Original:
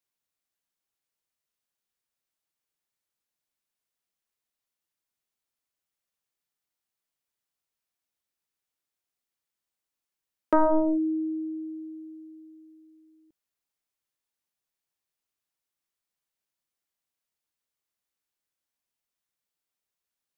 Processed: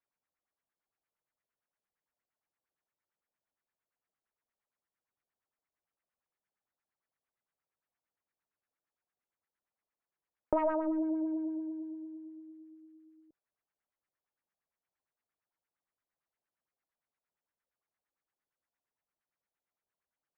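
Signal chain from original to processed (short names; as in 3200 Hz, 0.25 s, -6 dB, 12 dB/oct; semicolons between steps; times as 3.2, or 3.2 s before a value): one diode to ground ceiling -25 dBFS; compressor 6:1, threshold -28 dBFS, peak gain reduction 8 dB; LFO low-pass sine 8.7 Hz 580–2000 Hz; gain -2.5 dB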